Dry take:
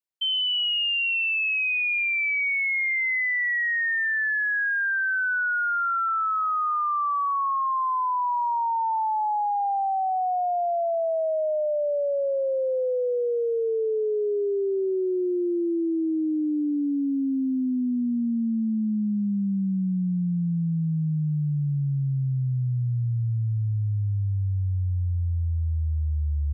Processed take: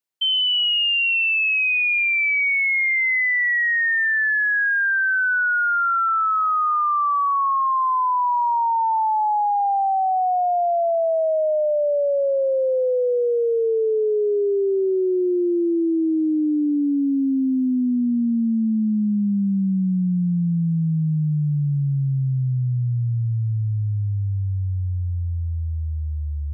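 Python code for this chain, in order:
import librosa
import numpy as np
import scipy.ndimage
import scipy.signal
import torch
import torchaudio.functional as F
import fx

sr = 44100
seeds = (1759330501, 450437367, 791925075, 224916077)

y = scipy.signal.sosfilt(scipy.signal.butter(2, 98.0, 'highpass', fs=sr, output='sos'), x)
y = y * 10.0 ** (5.0 / 20.0)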